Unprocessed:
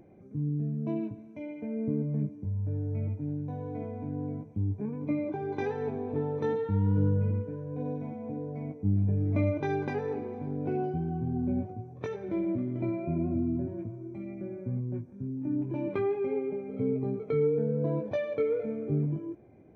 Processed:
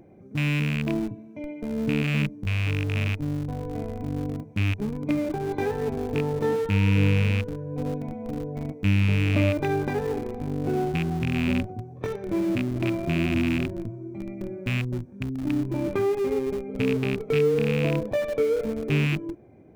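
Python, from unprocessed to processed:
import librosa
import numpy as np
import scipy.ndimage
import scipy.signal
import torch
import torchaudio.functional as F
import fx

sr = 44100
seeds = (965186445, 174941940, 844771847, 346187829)

p1 = fx.rattle_buzz(x, sr, strikes_db=-29.0, level_db=-23.0)
p2 = fx.schmitt(p1, sr, flips_db=-31.0)
p3 = p1 + (p2 * librosa.db_to_amplitude(-12.0))
y = p3 * librosa.db_to_amplitude(4.0)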